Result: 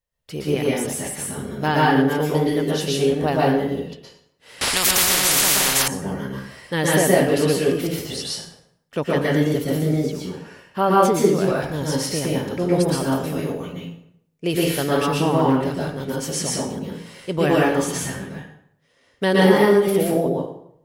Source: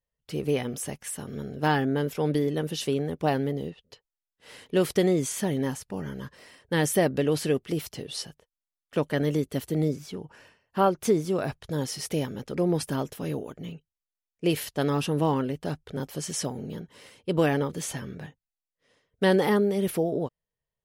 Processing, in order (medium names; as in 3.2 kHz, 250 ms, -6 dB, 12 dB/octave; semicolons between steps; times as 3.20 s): peaking EQ 280 Hz -2.5 dB 2.3 oct; plate-style reverb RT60 0.7 s, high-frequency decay 0.75×, pre-delay 105 ms, DRR -5 dB; 4.61–5.88 s: spectrum-flattening compressor 10:1; trim +3 dB